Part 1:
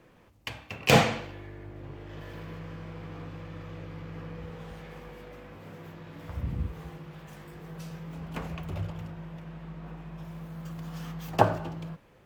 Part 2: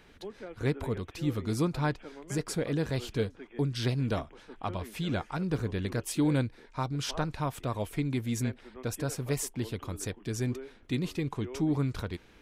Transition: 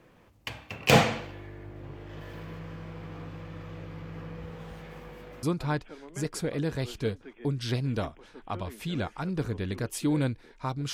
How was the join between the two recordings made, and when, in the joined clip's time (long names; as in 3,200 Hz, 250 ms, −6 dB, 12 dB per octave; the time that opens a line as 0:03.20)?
part 1
0:05.43: continue with part 2 from 0:01.57